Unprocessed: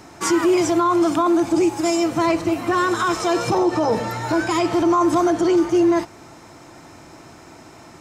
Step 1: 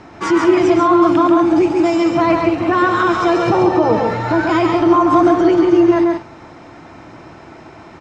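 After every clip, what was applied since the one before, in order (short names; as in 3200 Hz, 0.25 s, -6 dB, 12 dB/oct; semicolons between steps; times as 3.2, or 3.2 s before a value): LPF 3200 Hz 12 dB/oct; on a send: loudspeakers at several distances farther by 47 m -4 dB, 62 m -11 dB; on the sum: gain +4 dB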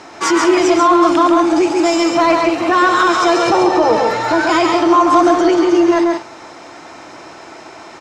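tone controls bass -15 dB, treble +10 dB; in parallel at -7.5 dB: soft clip -17 dBFS, distortion -10 dB; on the sum: gain +1.5 dB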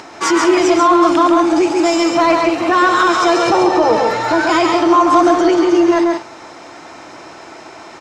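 upward compressor, threshold -34 dBFS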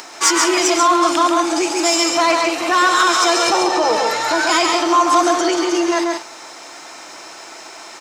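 RIAA curve recording; gain -2 dB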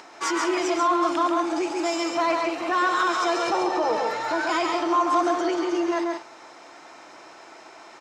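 LPF 1800 Hz 6 dB/oct; gain -6.5 dB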